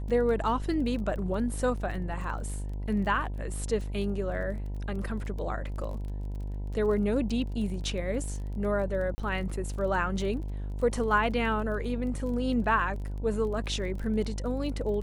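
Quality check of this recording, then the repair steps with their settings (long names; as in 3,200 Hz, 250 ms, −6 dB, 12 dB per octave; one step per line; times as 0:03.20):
mains buzz 50 Hz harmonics 20 −34 dBFS
surface crackle 23 per second −38 dBFS
0:09.15–0:09.18: drop-out 30 ms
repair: click removal
hum removal 50 Hz, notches 20
repair the gap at 0:09.15, 30 ms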